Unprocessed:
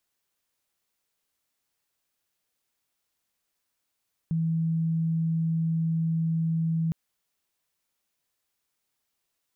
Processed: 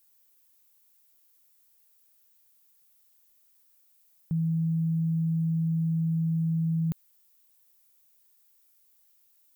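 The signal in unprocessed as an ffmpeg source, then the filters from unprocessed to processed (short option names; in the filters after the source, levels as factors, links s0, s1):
-f lavfi -i "aevalsrc='0.0708*sin(2*PI*163*t)':d=2.61:s=44100"
-af "aemphasis=mode=production:type=50fm"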